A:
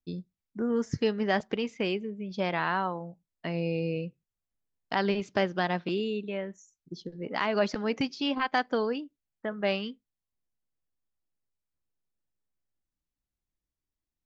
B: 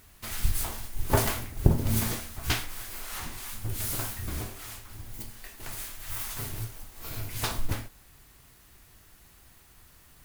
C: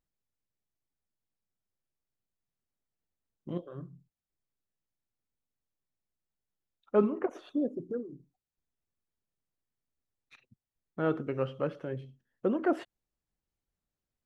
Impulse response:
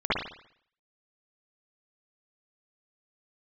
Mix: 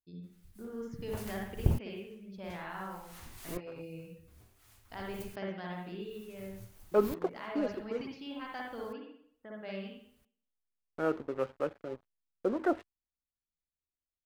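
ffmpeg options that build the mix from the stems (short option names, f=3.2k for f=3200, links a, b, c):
-filter_complex "[0:a]volume=-19.5dB,asplit=2[a][b];[b]volume=-9.5dB[c];[1:a]aeval=exprs='val(0)*pow(10,-40*if(lt(mod(-0.56*n/s,1),2*abs(-0.56)/1000),1-mod(-0.56*n/s,1)/(2*abs(-0.56)/1000),(mod(-0.56*n/s,1)-2*abs(-0.56)/1000)/(1-2*abs(-0.56)/1000))/20)':c=same,volume=-6.5dB[d];[2:a]highpass=280,afwtdn=0.00501,aeval=exprs='sgn(val(0))*max(abs(val(0))-0.00376,0)':c=same,volume=0dB[e];[3:a]atrim=start_sample=2205[f];[c][f]afir=irnorm=-1:irlink=0[g];[a][d][e][g]amix=inputs=4:normalize=0,equalizer=f=79:t=o:w=1:g=5.5"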